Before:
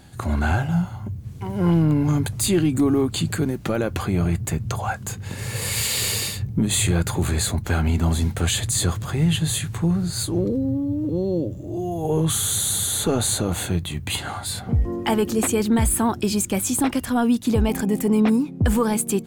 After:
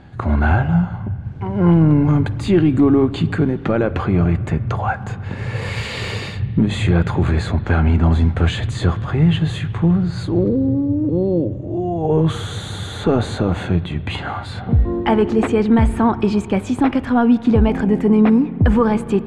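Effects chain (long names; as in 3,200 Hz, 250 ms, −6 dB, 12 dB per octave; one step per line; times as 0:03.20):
low-pass filter 2,200 Hz 12 dB per octave
convolution reverb RT60 2.3 s, pre-delay 40 ms, DRR 15.5 dB
level +5.5 dB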